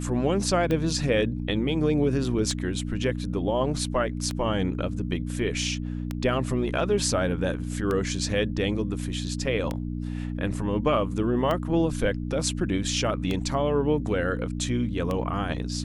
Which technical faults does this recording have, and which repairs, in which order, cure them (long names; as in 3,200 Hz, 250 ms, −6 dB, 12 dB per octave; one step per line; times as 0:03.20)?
mains hum 60 Hz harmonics 5 −31 dBFS
scratch tick 33 1/3 rpm −15 dBFS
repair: click removal
hum removal 60 Hz, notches 5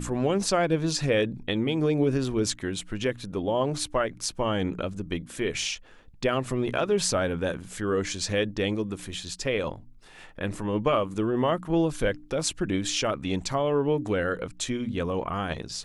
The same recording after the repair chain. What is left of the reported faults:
none of them is left